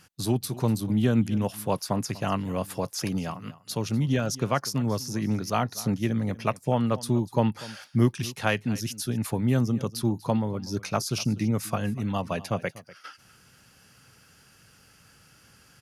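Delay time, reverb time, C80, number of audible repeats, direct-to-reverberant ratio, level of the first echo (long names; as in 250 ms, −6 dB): 244 ms, no reverb audible, no reverb audible, 1, no reverb audible, −18.5 dB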